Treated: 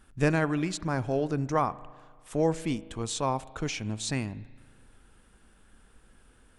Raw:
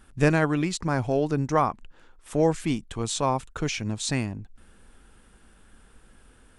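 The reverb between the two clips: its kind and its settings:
spring reverb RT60 1.7 s, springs 37 ms, chirp 45 ms, DRR 18 dB
level −4 dB

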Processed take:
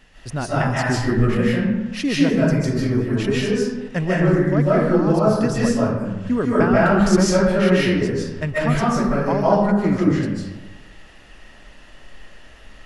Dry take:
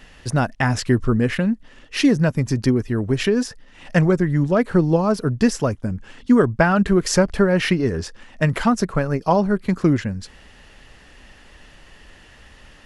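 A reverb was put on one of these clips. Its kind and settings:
comb and all-pass reverb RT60 1.1 s, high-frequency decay 0.55×, pre-delay 110 ms, DRR −7.5 dB
level −7 dB

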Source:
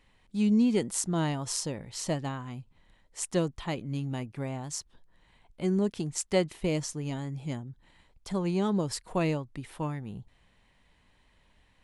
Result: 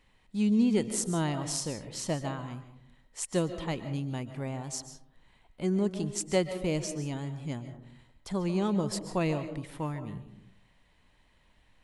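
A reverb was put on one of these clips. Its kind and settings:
comb and all-pass reverb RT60 0.7 s, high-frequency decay 0.35×, pre-delay 100 ms, DRR 10 dB
level −1 dB

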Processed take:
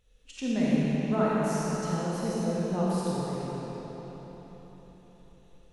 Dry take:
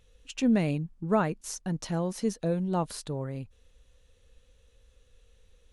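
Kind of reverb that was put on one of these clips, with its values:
comb and all-pass reverb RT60 4.5 s, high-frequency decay 0.8×, pre-delay 5 ms, DRR −8 dB
level −7.5 dB

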